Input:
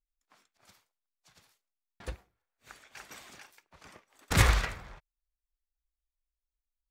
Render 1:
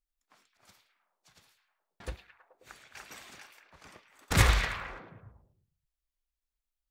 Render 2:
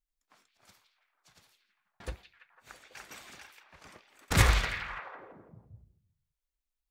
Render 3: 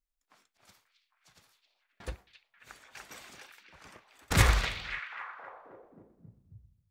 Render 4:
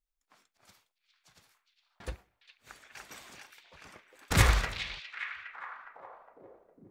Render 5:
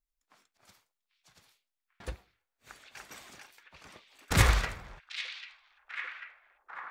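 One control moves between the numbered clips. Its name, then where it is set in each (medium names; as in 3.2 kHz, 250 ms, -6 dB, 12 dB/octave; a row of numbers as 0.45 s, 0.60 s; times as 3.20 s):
repeats whose band climbs or falls, time: 107 ms, 166 ms, 268 ms, 410 ms, 793 ms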